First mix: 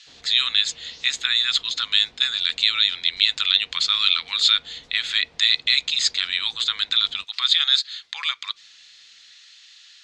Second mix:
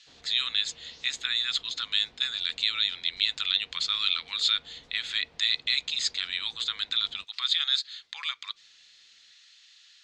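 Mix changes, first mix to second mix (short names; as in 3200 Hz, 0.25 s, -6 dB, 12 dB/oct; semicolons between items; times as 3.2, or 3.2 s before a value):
speech -7.5 dB; background -4.0 dB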